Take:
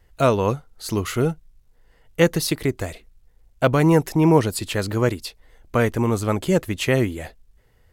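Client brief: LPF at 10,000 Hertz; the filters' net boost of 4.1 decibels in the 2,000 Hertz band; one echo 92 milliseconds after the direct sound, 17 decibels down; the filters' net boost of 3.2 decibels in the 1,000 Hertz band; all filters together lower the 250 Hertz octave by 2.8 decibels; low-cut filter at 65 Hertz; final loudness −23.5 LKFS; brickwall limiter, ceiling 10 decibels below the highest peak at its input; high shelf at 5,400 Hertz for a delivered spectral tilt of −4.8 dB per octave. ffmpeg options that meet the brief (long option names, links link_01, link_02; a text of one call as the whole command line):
ffmpeg -i in.wav -af "highpass=65,lowpass=10000,equalizer=frequency=250:width_type=o:gain=-4.5,equalizer=frequency=1000:width_type=o:gain=3,equalizer=frequency=2000:width_type=o:gain=3.5,highshelf=frequency=5400:gain=5.5,alimiter=limit=-11dB:level=0:latency=1,aecho=1:1:92:0.141,volume=0.5dB" out.wav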